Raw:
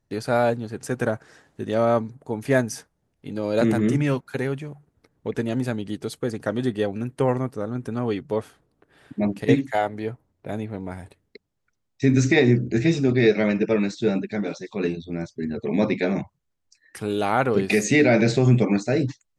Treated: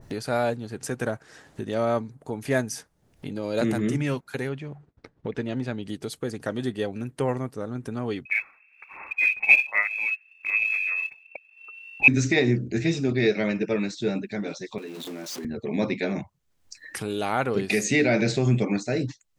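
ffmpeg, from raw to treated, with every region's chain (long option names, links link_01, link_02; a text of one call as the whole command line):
ffmpeg -i in.wav -filter_complex "[0:a]asettb=1/sr,asplit=3[link_01][link_02][link_03];[link_01]atrim=end=4.494[link_04];[link_02]atrim=start=4.49:end=5.83,asetpts=PTS-STARTPTS,afade=type=in:duration=0.004:curve=qsin,afade=type=out:start_time=1.336:duration=0.004:curve=qsin,agate=range=-33dB:threshold=-59dB:ratio=3:release=100:detection=peak,lowpass=4400[link_05];[link_03]atrim=start=5.826[link_06];[link_04][link_05]acrossfade=duration=0.004:curve1=hsin:curve2=qsin[link_07];[link_07][link_06]acrossfade=duration=0.004:curve1=qsin:curve2=hsin,asettb=1/sr,asplit=3[link_08][link_09][link_10];[link_08]atrim=end=8.254[link_11];[link_09]atrim=start=8.25:end=12.08,asetpts=PTS-STARTPTS,afade=type=in:duration=0.004:curve=qsin,afade=type=out:start_time=3.826:duration=0.004:curve=qsin,asubboost=boost=6:cutoff=190,lowpass=frequency=2300:width_type=q:width=0.5098,lowpass=frequency=2300:width_type=q:width=0.6013,lowpass=frequency=2300:width_type=q:width=0.9,lowpass=frequency=2300:width_type=q:width=2.563,afreqshift=-2700,aphaser=in_gain=1:out_gain=1:delay=4.8:decay=0.37:speed=1.3:type=sinusoidal[link_12];[link_10]atrim=start=12.076[link_13];[link_11][link_12]acrossfade=duration=0.004:curve1=hsin:curve2=qsin[link_14];[link_14][link_13]acrossfade=duration=0.004:curve1=qsin:curve2=hsin,asettb=1/sr,asplit=3[link_15][link_16][link_17];[link_15]atrim=end=14.784[link_18];[link_16]atrim=start=14.78:end=15.45,asetpts=PTS-STARTPTS,afade=type=in:duration=0.004:curve=qsin,afade=type=out:start_time=0.666:duration=0.004:curve=qsin,aeval=exprs='val(0)+0.5*0.0224*sgn(val(0))':channel_layout=same,highpass=frequency=230:width=0.5412,highpass=frequency=230:width=1.3066,acompressor=threshold=-37dB:ratio=3:attack=3.2:release=140:knee=1:detection=peak[link_19];[link_17]atrim=start=15.446[link_20];[link_18][link_19]acrossfade=duration=0.004:curve1=hsin:curve2=qsin[link_21];[link_21][link_20]acrossfade=duration=0.004:curve1=qsin:curve2=hsin,acompressor=mode=upward:threshold=-23dB:ratio=2.5,adynamicequalizer=threshold=0.0141:dfrequency=1900:dqfactor=0.7:tfrequency=1900:tqfactor=0.7:attack=5:release=100:ratio=0.375:range=2:mode=boostabove:tftype=highshelf,volume=-4.5dB" out.wav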